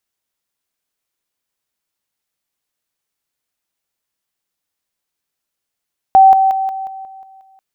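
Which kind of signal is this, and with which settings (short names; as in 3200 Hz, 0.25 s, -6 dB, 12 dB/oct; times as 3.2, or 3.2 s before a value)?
level ladder 770 Hz -3 dBFS, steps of -6 dB, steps 8, 0.18 s 0.00 s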